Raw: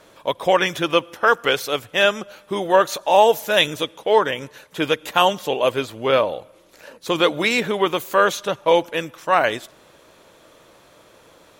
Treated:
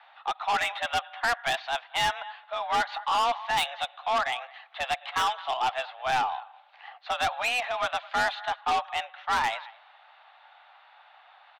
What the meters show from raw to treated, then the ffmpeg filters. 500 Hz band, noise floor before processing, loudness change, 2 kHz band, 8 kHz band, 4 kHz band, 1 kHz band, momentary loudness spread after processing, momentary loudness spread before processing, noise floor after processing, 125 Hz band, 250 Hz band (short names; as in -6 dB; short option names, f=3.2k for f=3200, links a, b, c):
-17.5 dB, -52 dBFS, -9.0 dB, -6.5 dB, -7.5 dB, -8.0 dB, -5.0 dB, 9 LU, 10 LU, -56 dBFS, -16.0 dB, -21.5 dB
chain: -filter_complex "[0:a]asplit=2[a][b];[b]adelay=215.7,volume=-24dB,highshelf=f=4k:g=-4.85[c];[a][c]amix=inputs=2:normalize=0,highpass=f=460:t=q:w=0.5412,highpass=f=460:t=q:w=1.307,lowpass=f=3.4k:t=q:w=0.5176,lowpass=f=3.4k:t=q:w=0.7071,lowpass=f=3.4k:t=q:w=1.932,afreqshift=250,aeval=exprs='(tanh(8.91*val(0)+0.05)-tanh(0.05))/8.91':c=same,volume=-2.5dB"